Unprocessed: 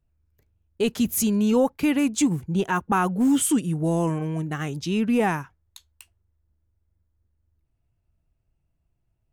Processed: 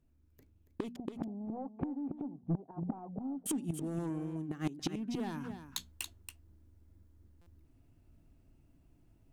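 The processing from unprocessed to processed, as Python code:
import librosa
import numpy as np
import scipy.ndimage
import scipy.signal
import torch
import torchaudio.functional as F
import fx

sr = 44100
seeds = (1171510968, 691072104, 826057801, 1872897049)

y = np.minimum(x, 2.0 * 10.0 ** (-18.5 / 20.0) - x)
y = fx.leveller(y, sr, passes=1)
y = fx.peak_eq(y, sr, hz=270.0, db=14.0, octaves=0.75)
y = fx.hum_notches(y, sr, base_hz=60, count=4)
y = fx.gate_flip(y, sr, shuts_db=-12.0, range_db=-29)
y = fx.ladder_lowpass(y, sr, hz=830.0, resonance_pct=65, at=(0.96, 3.46))
y = y + 10.0 ** (-12.0 / 20.0) * np.pad(y, (int(280 * sr / 1000.0), 0))[:len(y)]
y = fx.rider(y, sr, range_db=5, speed_s=0.5)
y = 10.0 ** (-31.0 / 20.0) * np.tanh(y / 10.0 ** (-31.0 / 20.0))
y = fx.buffer_glitch(y, sr, at_s=(7.41,), block=256, repeats=9)
y = F.gain(torch.from_numpy(y), 5.0).numpy()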